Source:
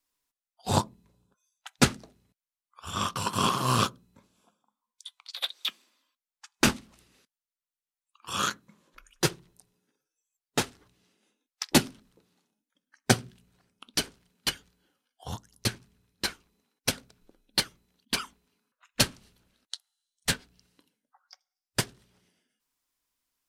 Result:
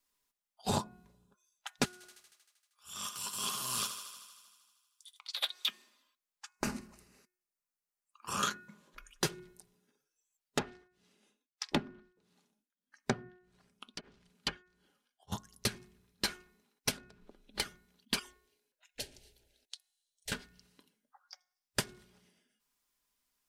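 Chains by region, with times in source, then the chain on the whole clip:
1.85–5.2 pre-emphasis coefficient 0.9 + transient shaper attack -9 dB, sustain 0 dB + thinning echo 78 ms, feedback 73%, high-pass 310 Hz, level -10 dB
6.49–8.43 compressor 5:1, threshold -29 dBFS + bell 3400 Hz -14.5 dB 0.38 oct
10.58–15.32 treble ducked by the level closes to 1500 Hz, closed at -24.5 dBFS + beating tremolo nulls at 1.6 Hz
16.97–17.6 LPF 2500 Hz 6 dB/oct + three-band squash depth 100%
18.19–20.32 fixed phaser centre 480 Hz, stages 4 + compressor 2.5:1, threshold -45 dBFS
whole clip: comb 4.9 ms, depth 34%; de-hum 363.1 Hz, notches 7; compressor 10:1, threshold -28 dBFS

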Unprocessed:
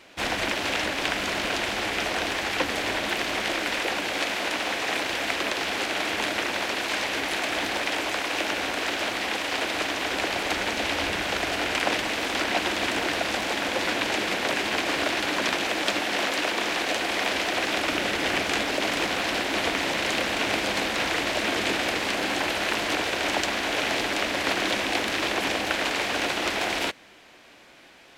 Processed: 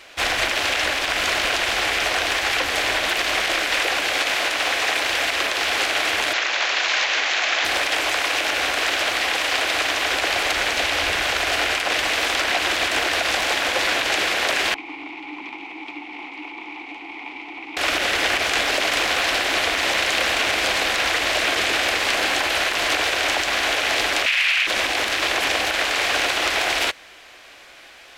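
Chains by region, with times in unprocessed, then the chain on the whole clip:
6.33–7.65 weighting filter A + careless resampling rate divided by 3×, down none, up filtered
14.74–17.77 vowel filter u + tone controls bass +2 dB, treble -5 dB
24.26–24.67 HPF 1100 Hz + bell 2500 Hz +14.5 dB 0.97 oct
whole clip: bell 200 Hz -14 dB 1.9 oct; limiter -18 dBFS; notch 920 Hz, Q 16; gain +8 dB

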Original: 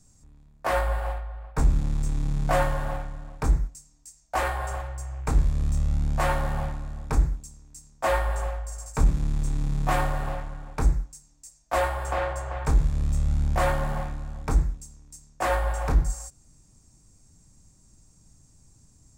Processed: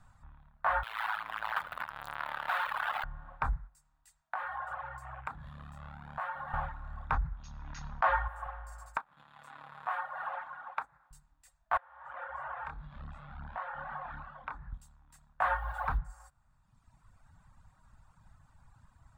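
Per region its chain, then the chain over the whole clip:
0.83–3.04 infinite clipping + HPF 1200 Hz 6 dB/oct + echo 76 ms -11 dB
4.21–6.54 HPF 140 Hz + compressor, threshold -39 dBFS
7.12–8.28 brick-wall FIR low-pass 6800 Hz + fast leveller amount 50%
8.97–11.11 compressor 10:1, threshold -28 dBFS + HPF 450 Hz
11.77–14.73 three-band isolator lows -14 dB, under 160 Hz, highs -18 dB, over 6000 Hz + compressor 12:1, threshold -37 dBFS + chorus 2.7 Hz, delay 20 ms, depth 7.8 ms
15.43–15.98 CVSD 64 kbps + requantised 8-bit, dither triangular
whole clip: reverb removal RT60 1.2 s; EQ curve 110 Hz 0 dB, 250 Hz -7 dB, 370 Hz -17 dB, 530 Hz -2 dB, 880 Hz +12 dB, 1500 Hz +15 dB, 2200 Hz +3 dB, 3600 Hz +1 dB, 5900 Hz -21 dB, 12000 Hz -11 dB; compressor 2:1, threshold -38 dBFS

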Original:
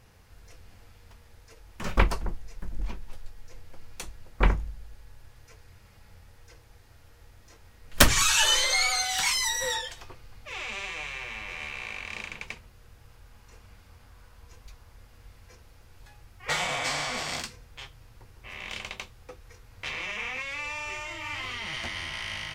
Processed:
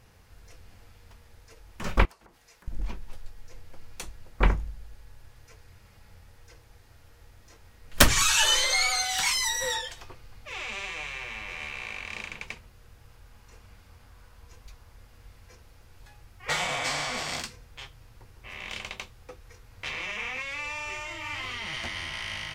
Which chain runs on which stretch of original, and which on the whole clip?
2.05–2.68 HPF 770 Hz 6 dB/oct + compressor 12:1, threshold -50 dBFS
whole clip: dry

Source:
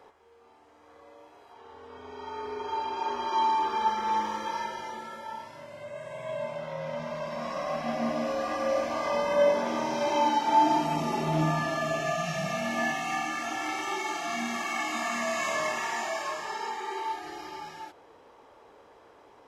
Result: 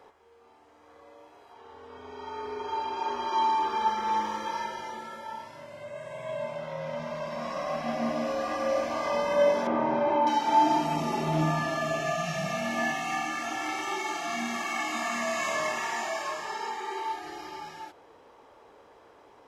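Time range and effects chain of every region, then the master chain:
9.67–10.27 LPF 1600 Hz + fast leveller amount 50%
whole clip: dry

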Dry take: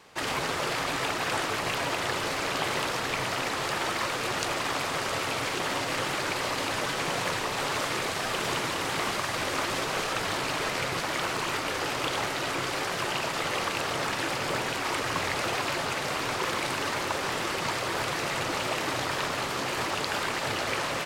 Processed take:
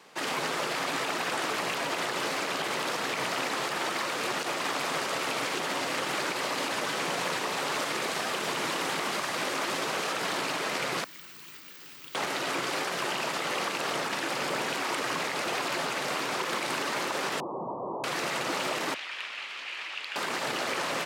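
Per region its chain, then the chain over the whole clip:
11.04–12.15 passive tone stack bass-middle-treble 6-0-2 + careless resampling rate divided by 2×, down filtered, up zero stuff
17.4–18.04 infinite clipping + steep low-pass 1100 Hz 96 dB/oct
18.94–20.16 band-pass 2600 Hz, Q 2.3 + hard clip -22 dBFS
whole clip: HPF 160 Hz 24 dB/oct; limiter -20.5 dBFS

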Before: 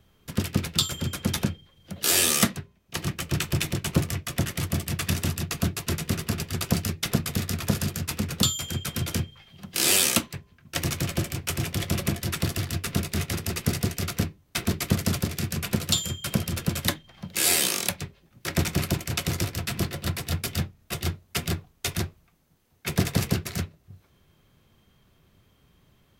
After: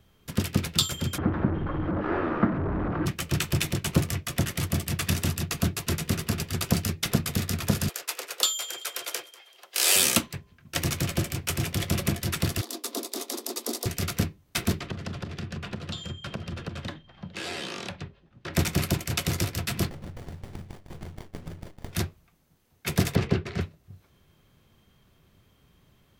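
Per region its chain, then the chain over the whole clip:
1.18–3.06 delta modulation 32 kbps, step -21.5 dBFS + Chebyshev low-pass 1400 Hz, order 3 + bell 310 Hz +11.5 dB 0.24 oct
7.89–9.96 inverse Chebyshev high-pass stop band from 220 Hz + feedback echo 0.192 s, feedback 29%, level -20.5 dB
12.61–13.86 steep high-pass 240 Hz 96 dB/oct + band shelf 2000 Hz -11.5 dB 1.3 oct
14.8–18.54 LPF 3100 Hz + bell 2200 Hz -5 dB 0.3 oct + compressor 4:1, threshold -31 dBFS
19.9–21.93 thinning echo 0.154 s, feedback 28%, high-pass 1100 Hz, level -5 dB + compressor 8:1, threshold -35 dBFS + running maximum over 33 samples
23.15–23.61 LPF 3100 Hz + bell 400 Hz +6.5 dB 0.42 oct
whole clip: dry

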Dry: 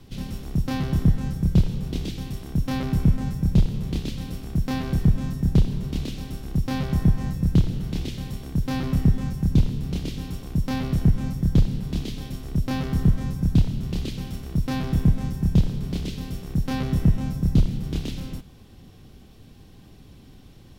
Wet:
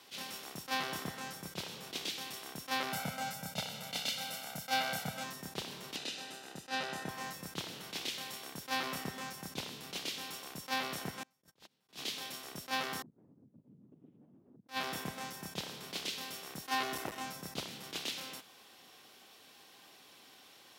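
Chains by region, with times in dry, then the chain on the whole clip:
2.92–5.24 HPF 93 Hz + comb 1.4 ms, depth 98%
5.96–7.09 LPF 9100 Hz + notch comb 1100 Hz
11.23–11.89 gate -20 dBFS, range -32 dB + compressor 2.5:1, threshold -30 dBFS
13.02–14.69 compressor, threshold -29 dBFS + LPC vocoder at 8 kHz whisper + Butterworth band-pass 170 Hz, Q 0.97
16.63–17.26 comb 2.8 ms, depth 53% + overloaded stage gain 15 dB
whole clip: HPF 810 Hz 12 dB/oct; attack slew limiter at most 320 dB/s; gain +2.5 dB

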